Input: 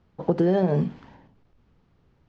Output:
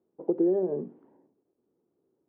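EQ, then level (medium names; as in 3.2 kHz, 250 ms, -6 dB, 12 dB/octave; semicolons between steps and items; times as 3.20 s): ladder band-pass 410 Hz, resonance 55%; bass shelf 440 Hz +5.5 dB; 0.0 dB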